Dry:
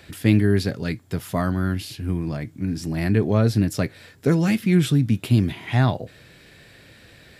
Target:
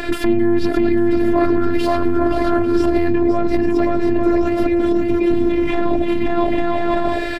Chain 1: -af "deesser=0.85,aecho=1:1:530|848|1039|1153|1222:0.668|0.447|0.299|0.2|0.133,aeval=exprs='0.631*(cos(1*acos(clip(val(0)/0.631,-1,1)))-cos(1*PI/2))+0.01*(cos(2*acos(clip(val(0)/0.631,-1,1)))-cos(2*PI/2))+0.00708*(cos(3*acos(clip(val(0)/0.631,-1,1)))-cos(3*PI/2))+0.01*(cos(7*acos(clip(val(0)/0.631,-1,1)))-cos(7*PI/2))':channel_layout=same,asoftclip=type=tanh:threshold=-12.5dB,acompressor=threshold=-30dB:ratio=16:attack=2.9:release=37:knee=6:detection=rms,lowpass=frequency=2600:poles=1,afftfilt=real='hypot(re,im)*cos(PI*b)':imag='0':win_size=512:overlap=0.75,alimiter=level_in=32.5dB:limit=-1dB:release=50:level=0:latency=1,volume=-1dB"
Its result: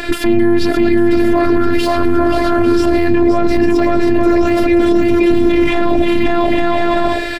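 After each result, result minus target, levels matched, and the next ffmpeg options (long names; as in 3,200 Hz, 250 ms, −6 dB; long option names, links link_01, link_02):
downward compressor: peak gain reduction −7 dB; 2,000 Hz band +2.5 dB
-af "deesser=0.85,aecho=1:1:530|848|1039|1153|1222:0.668|0.447|0.299|0.2|0.133,aeval=exprs='0.631*(cos(1*acos(clip(val(0)/0.631,-1,1)))-cos(1*PI/2))+0.01*(cos(2*acos(clip(val(0)/0.631,-1,1)))-cos(2*PI/2))+0.00708*(cos(3*acos(clip(val(0)/0.631,-1,1)))-cos(3*PI/2))+0.01*(cos(7*acos(clip(val(0)/0.631,-1,1)))-cos(7*PI/2))':channel_layout=same,asoftclip=type=tanh:threshold=-12.5dB,acompressor=threshold=-37.5dB:ratio=16:attack=2.9:release=37:knee=6:detection=rms,lowpass=frequency=2600:poles=1,afftfilt=real='hypot(re,im)*cos(PI*b)':imag='0':win_size=512:overlap=0.75,alimiter=level_in=32.5dB:limit=-1dB:release=50:level=0:latency=1,volume=-1dB"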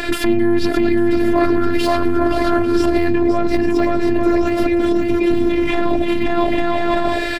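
2,000 Hz band +3.0 dB
-af "deesser=0.85,aecho=1:1:530|848|1039|1153|1222:0.668|0.447|0.299|0.2|0.133,aeval=exprs='0.631*(cos(1*acos(clip(val(0)/0.631,-1,1)))-cos(1*PI/2))+0.01*(cos(2*acos(clip(val(0)/0.631,-1,1)))-cos(2*PI/2))+0.00708*(cos(3*acos(clip(val(0)/0.631,-1,1)))-cos(3*PI/2))+0.01*(cos(7*acos(clip(val(0)/0.631,-1,1)))-cos(7*PI/2))':channel_layout=same,asoftclip=type=tanh:threshold=-12.5dB,acompressor=threshold=-37.5dB:ratio=16:attack=2.9:release=37:knee=6:detection=rms,lowpass=frequency=1200:poles=1,afftfilt=real='hypot(re,im)*cos(PI*b)':imag='0':win_size=512:overlap=0.75,alimiter=level_in=32.5dB:limit=-1dB:release=50:level=0:latency=1,volume=-1dB"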